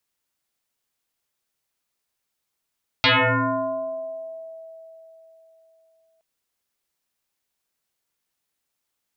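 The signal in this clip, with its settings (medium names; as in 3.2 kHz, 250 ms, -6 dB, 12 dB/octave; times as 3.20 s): FM tone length 3.17 s, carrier 651 Hz, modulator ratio 0.59, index 10, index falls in 1.63 s exponential, decay 3.80 s, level -13 dB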